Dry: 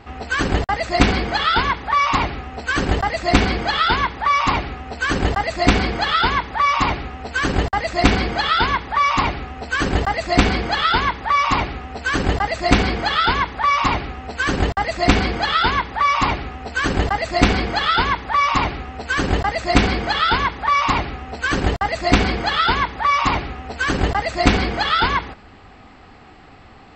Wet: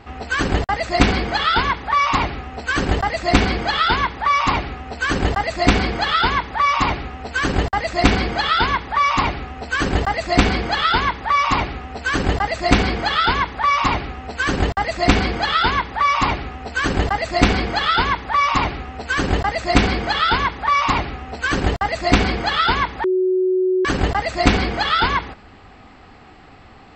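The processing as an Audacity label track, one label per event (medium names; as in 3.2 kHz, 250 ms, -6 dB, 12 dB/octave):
23.040000	23.850000	bleep 371 Hz -14.5 dBFS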